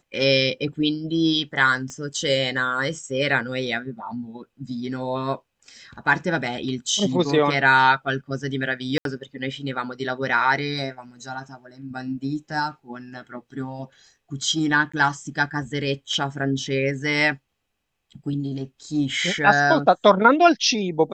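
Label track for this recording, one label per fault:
1.900000	1.900000	pop -23 dBFS
8.980000	9.050000	gap 72 ms
14.920000	14.940000	gap 15 ms

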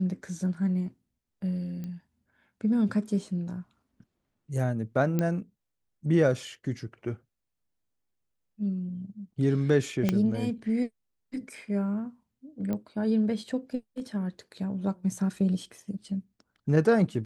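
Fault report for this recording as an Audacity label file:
1.840000	1.840000	pop -26 dBFS
5.190000	5.190000	pop -15 dBFS
10.090000	10.090000	pop -12 dBFS
12.730000	12.730000	pop -20 dBFS

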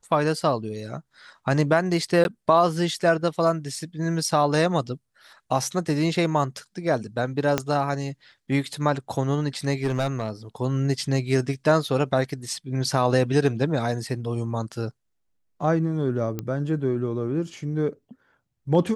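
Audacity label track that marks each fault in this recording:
2.240000	2.250000	gap 11 ms
7.580000	7.580000	pop -7 dBFS
9.830000	10.300000	clipped -18.5 dBFS
16.390000	16.390000	pop -15 dBFS

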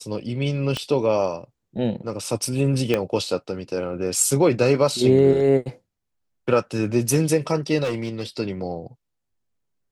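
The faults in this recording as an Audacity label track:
0.770000	0.770000	pop -12 dBFS
2.940000	2.940000	pop -8 dBFS
7.830000	8.230000	clipped -21 dBFS

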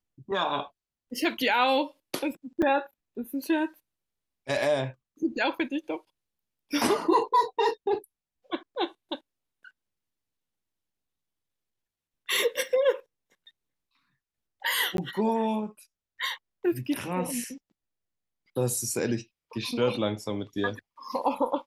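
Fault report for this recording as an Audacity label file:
2.620000	2.630000	gap 5.5 ms
14.970000	14.980000	gap 12 ms

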